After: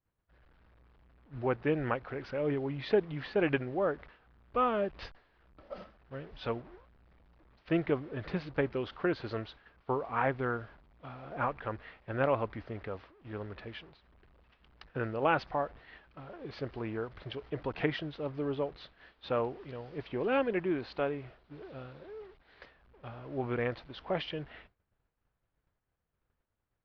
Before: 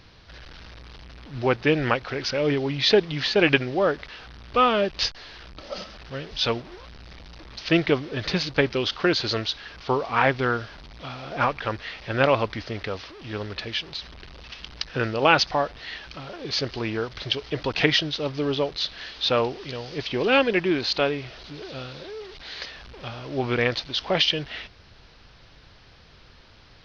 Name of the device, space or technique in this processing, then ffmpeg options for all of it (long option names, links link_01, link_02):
hearing-loss simulation: -af "lowpass=1600,agate=range=-33dB:threshold=-38dB:ratio=3:detection=peak,volume=-8.5dB"